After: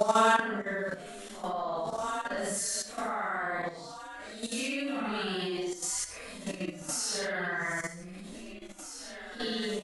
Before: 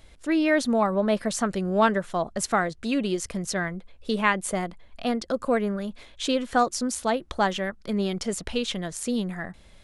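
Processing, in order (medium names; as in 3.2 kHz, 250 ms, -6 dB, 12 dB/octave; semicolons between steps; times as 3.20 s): recorder AGC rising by 6 dB/s; bass shelf 440 Hz -11.5 dB; frequency-shifting echo 463 ms, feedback 38%, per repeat +31 Hz, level -11.5 dB; Paulstretch 4.1×, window 0.10 s, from 1.78 s; level held to a coarse grid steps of 11 dB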